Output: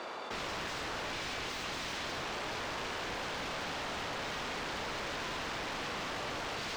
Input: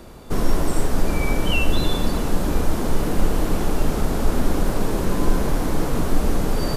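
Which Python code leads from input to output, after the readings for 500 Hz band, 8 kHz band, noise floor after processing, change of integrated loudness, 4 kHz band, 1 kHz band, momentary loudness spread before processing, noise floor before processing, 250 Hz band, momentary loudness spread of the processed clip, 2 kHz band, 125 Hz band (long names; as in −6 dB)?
−15.0 dB, −12.0 dB, −40 dBFS, −13.5 dB, −5.5 dB, −8.5 dB, 3 LU, −25 dBFS, −21.5 dB, 0 LU, −5.5 dB, −24.0 dB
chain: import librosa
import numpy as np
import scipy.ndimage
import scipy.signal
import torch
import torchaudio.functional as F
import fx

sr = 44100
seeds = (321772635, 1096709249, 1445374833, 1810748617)

y = scipy.signal.sosfilt(scipy.signal.butter(2, 770.0, 'highpass', fs=sr, output='sos'), x)
y = (np.mod(10.0 ** (29.0 / 20.0) * y + 1.0, 2.0) - 1.0) / 10.0 ** (29.0 / 20.0)
y = fx.air_absorb(y, sr, metres=170.0)
y = fx.env_flatten(y, sr, amount_pct=70)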